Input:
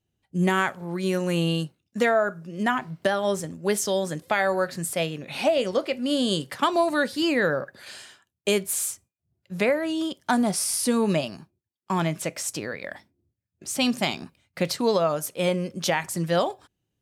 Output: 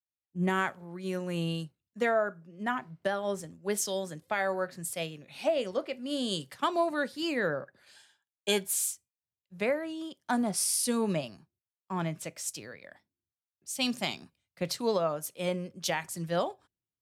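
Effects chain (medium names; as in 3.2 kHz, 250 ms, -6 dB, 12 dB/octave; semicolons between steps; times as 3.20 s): 7.95–8.68 s: small resonant body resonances 870/1600/3400 Hz, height 15 dB; three bands expanded up and down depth 70%; trim -7.5 dB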